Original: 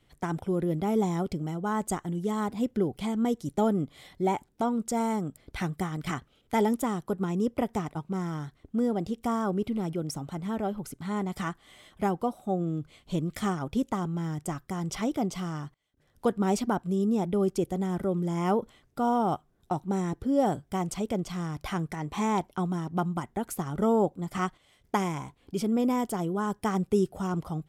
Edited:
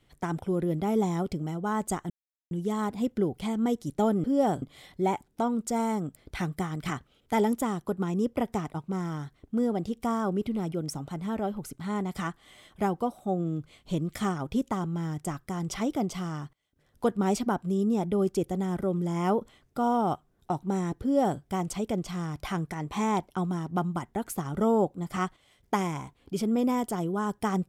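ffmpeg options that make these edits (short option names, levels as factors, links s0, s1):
-filter_complex "[0:a]asplit=4[s0][s1][s2][s3];[s0]atrim=end=2.1,asetpts=PTS-STARTPTS,afade=t=out:st=2.096:d=0.004:c=hsin,apad=pad_dur=0.41[s4];[s1]atrim=start=2.1:end=3.832,asetpts=PTS-STARTPTS,afade=t=in:d=0.004:c=hsin[s5];[s2]atrim=start=20.228:end=20.612[s6];[s3]atrim=start=3.828[s7];[s4][s5]concat=n=2:v=0:a=1[s8];[s8][s6]acrossfade=d=0.004:c1=hsin:c2=hsin[s9];[s9][s7]acrossfade=d=0.004:c1=hsin:c2=hsin"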